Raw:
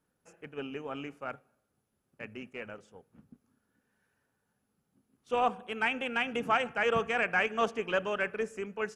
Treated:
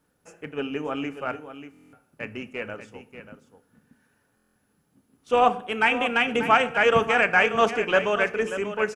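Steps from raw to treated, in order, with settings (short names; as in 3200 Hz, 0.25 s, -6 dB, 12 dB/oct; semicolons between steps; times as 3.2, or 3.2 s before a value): on a send: echo 0.587 s -11.5 dB; on the sum: FDN reverb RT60 0.46 s, low-frequency decay 1.25×, high-frequency decay 0.9×, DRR 12.5 dB; stuck buffer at 1.72/4.35, samples 1024, times 8; gain +8.5 dB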